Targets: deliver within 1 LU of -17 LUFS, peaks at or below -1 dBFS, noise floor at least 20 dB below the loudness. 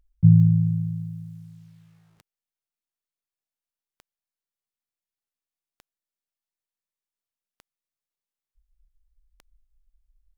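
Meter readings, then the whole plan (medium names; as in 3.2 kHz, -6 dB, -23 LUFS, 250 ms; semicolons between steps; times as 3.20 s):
clicks found 6; loudness -19.5 LUFS; peak level -4.5 dBFS; loudness target -17.0 LUFS
-> de-click; trim +2.5 dB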